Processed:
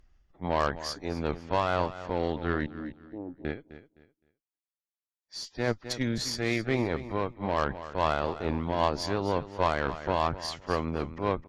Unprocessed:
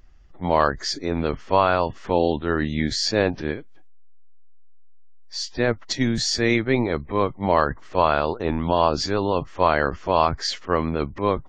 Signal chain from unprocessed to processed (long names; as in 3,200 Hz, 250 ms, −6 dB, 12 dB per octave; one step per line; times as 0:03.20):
0:02.66–0:03.45: formant resonators in series u
harmonic generator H 6 −20 dB, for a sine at −4 dBFS
on a send: repeating echo 258 ms, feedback 24%, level −13.5 dB
on the sum: amplitude modulation by smooth noise, depth 60%
level −6.5 dB